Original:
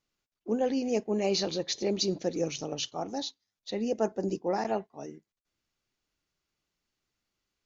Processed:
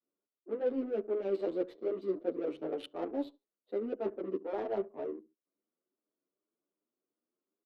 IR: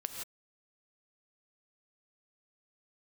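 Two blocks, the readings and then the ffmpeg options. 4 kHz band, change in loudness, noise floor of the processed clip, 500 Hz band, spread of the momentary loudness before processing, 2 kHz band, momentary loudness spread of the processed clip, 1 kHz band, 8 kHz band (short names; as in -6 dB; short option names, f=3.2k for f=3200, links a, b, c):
-21.5 dB, -5.0 dB, under -85 dBFS, -3.0 dB, 11 LU, -10.0 dB, 7 LU, -9.0 dB, n/a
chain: -filter_complex "[0:a]adynamicequalizer=threshold=0.01:dfrequency=400:dqfactor=1.3:tfrequency=400:tqfactor=1.3:attack=5:release=100:ratio=0.375:range=2:mode=boostabove:tftype=bell,areverse,acompressor=threshold=-34dB:ratio=5,areverse,highpass=f=270:w=0.5412,highpass=f=270:w=1.3066,equalizer=f=820:t=q:w=4:g=-8,equalizer=f=1.8k:t=q:w=4:g=-9,equalizer=f=2.5k:t=q:w=4:g=-7,lowpass=f=3.5k:w=0.5412,lowpass=f=3.5k:w=1.3066,aecho=1:1:70|140:0.119|0.0309,adynamicsmooth=sensitivity=8:basefreq=700,asplit=2[a][b];[b]adelay=9.2,afreqshift=2.6[c];[a][c]amix=inputs=2:normalize=1,volume=7.5dB"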